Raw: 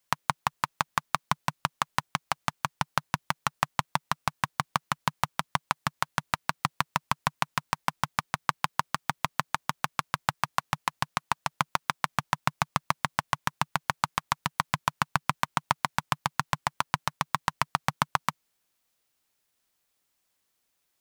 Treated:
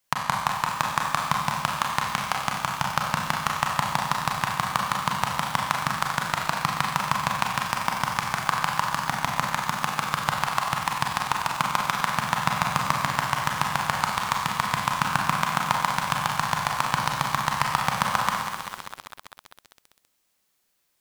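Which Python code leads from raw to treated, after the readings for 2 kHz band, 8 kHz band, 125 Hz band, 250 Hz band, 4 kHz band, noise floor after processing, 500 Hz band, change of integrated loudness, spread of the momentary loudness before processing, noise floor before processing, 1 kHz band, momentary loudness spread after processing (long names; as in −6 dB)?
+5.5 dB, +6.0 dB, +4.0 dB, +5.0 dB, +5.5 dB, −72 dBFS, +5.5 dB, +5.0 dB, 3 LU, −77 dBFS, +5.0 dB, 2 LU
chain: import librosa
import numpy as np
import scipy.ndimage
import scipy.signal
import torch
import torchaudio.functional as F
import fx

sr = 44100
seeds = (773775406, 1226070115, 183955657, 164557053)

y = fx.rev_schroeder(x, sr, rt60_s=1.1, comb_ms=30, drr_db=0.0)
y = fx.echo_crushed(y, sr, ms=196, feedback_pct=80, bits=6, wet_db=-8.5)
y = F.gain(torch.from_numpy(y), 1.5).numpy()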